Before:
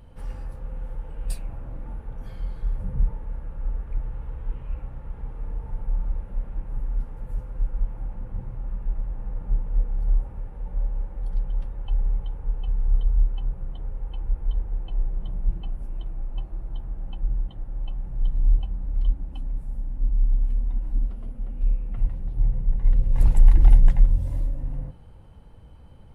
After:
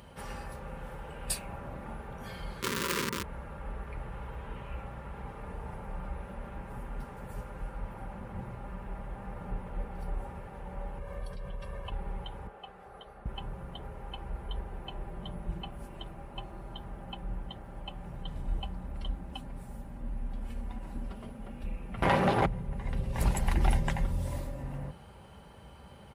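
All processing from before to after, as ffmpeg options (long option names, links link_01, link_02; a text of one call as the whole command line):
ffmpeg -i in.wav -filter_complex "[0:a]asettb=1/sr,asplit=3[link_01][link_02][link_03];[link_01]atrim=end=2.604[link_04];[link_02]atrim=start=2.6:end=3.24,asetpts=PTS-STARTPTS,afade=type=in:duration=0.004:curve=qsin,afade=type=out:start_time=0.636:duration=0.004:curve=qsin,acompressor=threshold=-22dB:ratio=12:attack=3.2:release=140:knee=1:detection=peak,aeval=exprs='(mod(33.5*val(0)+1,2)-1)/33.5':channel_layout=same,asuperstop=centerf=710:order=8:qfactor=1.9[link_05];[link_03]atrim=start=3.236[link_06];[link_04][link_05]acrossfade=duration=0.004:curve1=hsin:curve2=qsin[link_07];[link_07][link_06]acrossfade=duration=0.004:curve1=qsin:curve2=hsin,asettb=1/sr,asplit=3[link_08][link_09][link_10];[link_08]atrim=end=10.984[link_11];[link_09]atrim=start=10.98:end=11.92,asetpts=PTS-STARTPTS,afade=type=in:duration=0.004:curve=qsin,afade=type=out:start_time=0.936:duration=0.004:curve=qsin,aecho=1:1:1.8:0.91,atrim=end_sample=41454,acompressor=threshold=-23dB:ratio=2.5:attack=3.2:release=140:knee=1:detection=peak[link_12];[link_10]atrim=start=11.916[link_13];[link_11][link_12]acrossfade=duration=0.004:curve1=hsin:curve2=qsin[link_14];[link_14][link_13]acrossfade=duration=0.004:curve1=qsin:curve2=hsin,asettb=1/sr,asplit=3[link_15][link_16][link_17];[link_15]atrim=end=12.474[link_18];[link_16]atrim=start=12.47:end=13.26,asetpts=PTS-STARTPTS,afade=type=in:duration=0.004:curve=qsin,afade=type=out:start_time=0.786:duration=0.004:curve=qsin,bandpass=frequency=830:width_type=q:width=0.94,aemphasis=mode=production:type=75kf,bandreject=frequency=940:width=5.4[link_19];[link_17]atrim=start=13.256[link_20];[link_18][link_19]acrossfade=duration=0.004:curve1=hsin:curve2=qsin[link_21];[link_21][link_20]acrossfade=duration=0.004:curve1=qsin:curve2=hsin,asettb=1/sr,asplit=3[link_22][link_23][link_24];[link_22]atrim=end=22.024[link_25];[link_23]atrim=start=22.02:end=22.46,asetpts=PTS-STARTPTS,afade=type=in:duration=0.004:curve=qsin,afade=type=out:start_time=0.436:duration=0.004:curve=qsin,agate=range=-33dB:threshold=-27dB:ratio=3:release=100:detection=peak,highpass=frequency=120:poles=1,asplit=2[link_26][link_27];[link_27]highpass=frequency=720:poles=1,volume=39dB,asoftclip=type=tanh:threshold=-16dB[link_28];[link_26][link_28]amix=inputs=2:normalize=0,lowpass=frequency=1800:poles=1,volume=-6dB[link_29];[link_24]atrim=start=22.456[link_30];[link_25][link_29]acrossfade=duration=0.004:curve1=hsin:curve2=qsin[link_31];[link_31][link_30]acrossfade=duration=0.004:curve1=qsin:curve2=hsin,highpass=frequency=55:width=0.5412,highpass=frequency=55:width=1.3066,lowshelf=frequency=430:gain=-11,aecho=1:1:5.1:0.38,volume=8.5dB" out.wav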